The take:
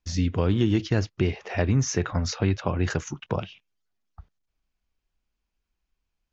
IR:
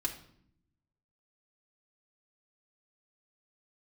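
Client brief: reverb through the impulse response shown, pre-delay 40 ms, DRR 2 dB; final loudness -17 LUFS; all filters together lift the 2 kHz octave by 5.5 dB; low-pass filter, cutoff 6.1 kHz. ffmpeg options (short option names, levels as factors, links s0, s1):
-filter_complex "[0:a]lowpass=6100,equalizer=f=2000:t=o:g=7,asplit=2[s0][s1];[1:a]atrim=start_sample=2205,adelay=40[s2];[s1][s2]afir=irnorm=-1:irlink=0,volume=0.596[s3];[s0][s3]amix=inputs=2:normalize=0,volume=2.11"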